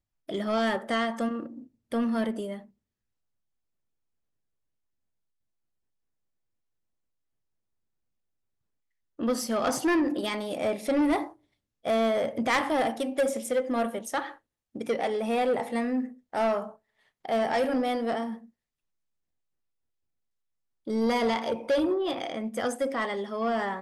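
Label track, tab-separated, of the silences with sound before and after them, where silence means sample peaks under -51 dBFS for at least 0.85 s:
2.670000	9.190000	silence
18.490000	20.870000	silence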